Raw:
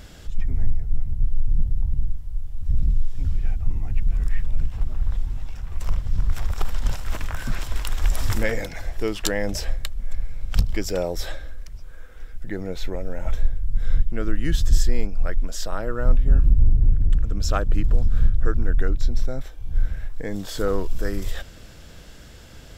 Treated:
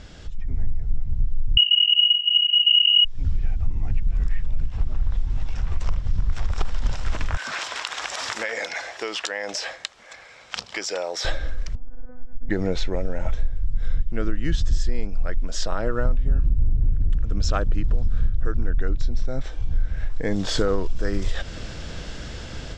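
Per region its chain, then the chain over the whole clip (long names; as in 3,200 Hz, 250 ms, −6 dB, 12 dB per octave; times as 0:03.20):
0:01.57–0:03.05: samples sorted by size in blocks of 16 samples + voice inversion scrambler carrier 2,900 Hz + tilt shelving filter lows −7 dB, about 1,200 Hz
0:07.37–0:11.25: high-pass filter 710 Hz + downward compressor, threshold −33 dBFS
0:11.75–0:12.50: Bessel low-pass filter 780 Hz, order 4 + one-pitch LPC vocoder at 8 kHz 250 Hz
whole clip: downward compressor 4 to 1, threshold −28 dBFS; low-pass filter 6,800 Hz 24 dB per octave; automatic gain control gain up to 10 dB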